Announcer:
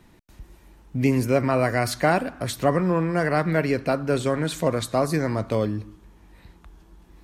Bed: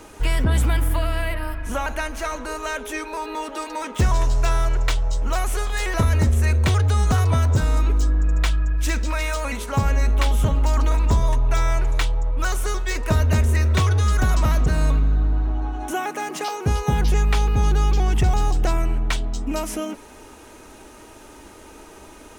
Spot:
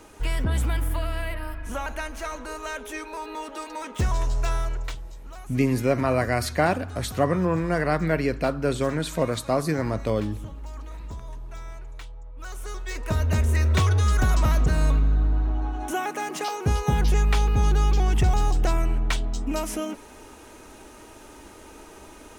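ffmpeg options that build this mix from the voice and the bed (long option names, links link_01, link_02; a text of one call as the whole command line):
ffmpeg -i stem1.wav -i stem2.wav -filter_complex "[0:a]adelay=4550,volume=-1.5dB[link_01];[1:a]volume=11.5dB,afade=type=out:start_time=4.54:duration=0.55:silence=0.211349,afade=type=in:start_time=12.33:duration=1.39:silence=0.141254[link_02];[link_01][link_02]amix=inputs=2:normalize=0" out.wav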